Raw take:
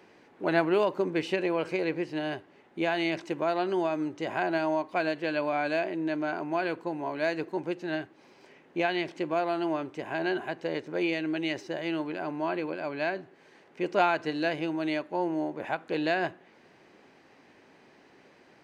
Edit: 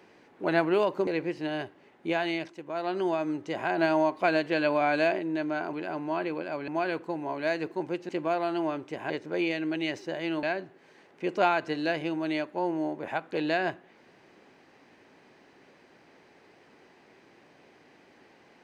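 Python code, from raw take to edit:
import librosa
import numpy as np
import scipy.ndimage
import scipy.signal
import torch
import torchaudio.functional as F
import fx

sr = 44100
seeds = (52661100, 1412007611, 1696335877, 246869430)

y = fx.edit(x, sr, fx.cut(start_s=1.07, length_s=0.72),
    fx.fade_down_up(start_s=2.81, length_s=1.04, db=-10.0, fade_s=0.47, curve='qsin'),
    fx.clip_gain(start_s=4.5, length_s=1.41, db=3.5),
    fx.cut(start_s=7.86, length_s=1.29),
    fx.cut(start_s=10.16, length_s=0.56),
    fx.move(start_s=12.05, length_s=0.95, to_s=6.45), tone=tone)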